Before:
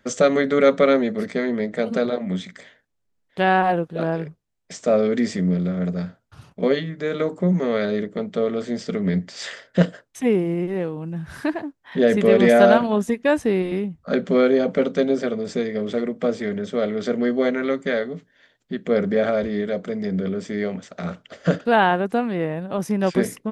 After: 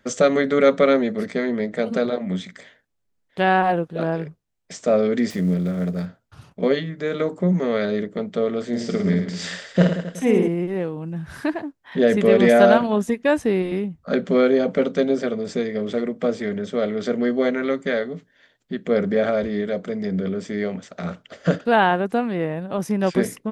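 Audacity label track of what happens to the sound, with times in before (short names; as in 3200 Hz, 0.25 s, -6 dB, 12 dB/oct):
5.300000	6.060000	switching dead time of 0.068 ms
8.680000	10.480000	reverse bouncing-ball echo first gap 50 ms, each gap 1.2×, echoes 5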